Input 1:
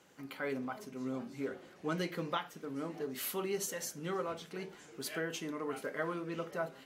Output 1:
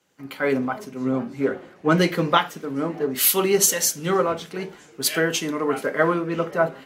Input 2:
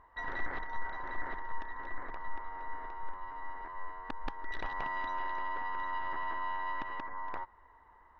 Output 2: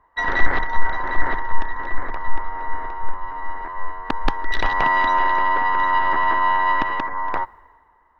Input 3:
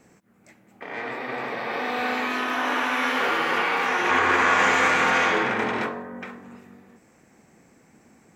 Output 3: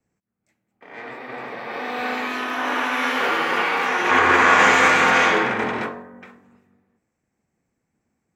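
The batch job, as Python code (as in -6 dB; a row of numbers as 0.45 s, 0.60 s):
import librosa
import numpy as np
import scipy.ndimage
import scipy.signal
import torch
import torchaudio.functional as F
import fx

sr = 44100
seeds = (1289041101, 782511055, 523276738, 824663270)

y = fx.band_widen(x, sr, depth_pct=70)
y = y * 10.0 ** (-2 / 20.0) / np.max(np.abs(y))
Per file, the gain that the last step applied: +16.0 dB, +18.0 dB, +2.0 dB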